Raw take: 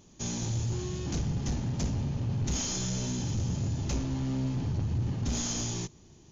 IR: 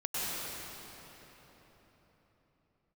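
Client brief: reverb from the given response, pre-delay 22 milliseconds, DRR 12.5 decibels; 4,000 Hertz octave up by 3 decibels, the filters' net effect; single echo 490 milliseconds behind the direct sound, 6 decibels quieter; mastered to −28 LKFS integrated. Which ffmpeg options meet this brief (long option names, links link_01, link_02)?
-filter_complex "[0:a]equalizer=frequency=4000:width_type=o:gain=4,aecho=1:1:490:0.501,asplit=2[link_01][link_02];[1:a]atrim=start_sample=2205,adelay=22[link_03];[link_02][link_03]afir=irnorm=-1:irlink=0,volume=-20dB[link_04];[link_01][link_04]amix=inputs=2:normalize=0,volume=2.5dB"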